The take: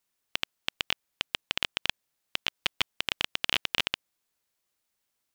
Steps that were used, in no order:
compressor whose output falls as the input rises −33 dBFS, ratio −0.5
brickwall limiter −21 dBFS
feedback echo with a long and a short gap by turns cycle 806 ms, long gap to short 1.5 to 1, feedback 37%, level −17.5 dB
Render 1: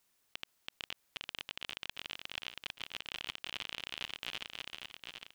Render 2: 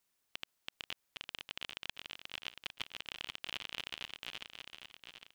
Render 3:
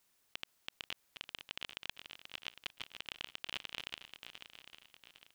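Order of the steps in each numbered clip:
feedback echo with a long and a short gap by turns, then compressor whose output falls as the input rises, then brickwall limiter
feedback echo with a long and a short gap by turns, then brickwall limiter, then compressor whose output falls as the input rises
compressor whose output falls as the input rises, then feedback echo with a long and a short gap by turns, then brickwall limiter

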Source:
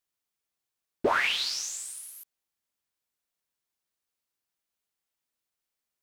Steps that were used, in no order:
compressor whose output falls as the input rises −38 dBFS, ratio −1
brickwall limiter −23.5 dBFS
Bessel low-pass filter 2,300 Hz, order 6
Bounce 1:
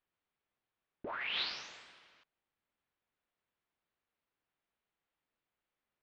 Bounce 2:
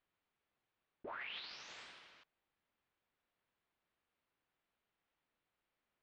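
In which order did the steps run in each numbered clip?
Bessel low-pass filter, then brickwall limiter, then compressor whose output falls as the input rises
compressor whose output falls as the input rises, then Bessel low-pass filter, then brickwall limiter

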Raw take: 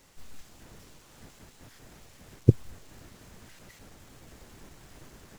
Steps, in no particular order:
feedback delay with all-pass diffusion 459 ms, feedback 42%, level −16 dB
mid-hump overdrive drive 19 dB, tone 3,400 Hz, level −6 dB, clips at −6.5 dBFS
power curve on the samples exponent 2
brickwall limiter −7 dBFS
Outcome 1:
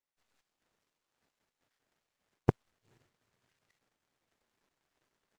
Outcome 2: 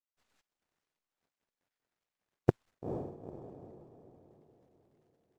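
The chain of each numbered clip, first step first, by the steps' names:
mid-hump overdrive, then feedback delay with all-pass diffusion, then power curve on the samples, then brickwall limiter
power curve on the samples, then feedback delay with all-pass diffusion, then brickwall limiter, then mid-hump overdrive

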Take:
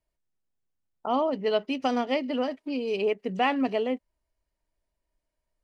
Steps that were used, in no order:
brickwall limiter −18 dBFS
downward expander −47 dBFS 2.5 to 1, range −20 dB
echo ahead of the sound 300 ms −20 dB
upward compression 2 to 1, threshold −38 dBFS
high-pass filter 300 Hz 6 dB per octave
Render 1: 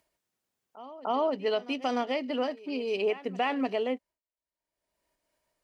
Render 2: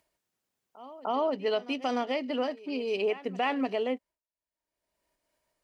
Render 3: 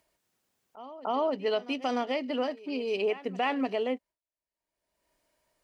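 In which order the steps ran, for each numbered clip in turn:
echo ahead of the sound, then downward expander, then upward compression, then high-pass filter, then brickwall limiter
downward expander, then upward compression, then echo ahead of the sound, then brickwall limiter, then high-pass filter
echo ahead of the sound, then brickwall limiter, then high-pass filter, then downward expander, then upward compression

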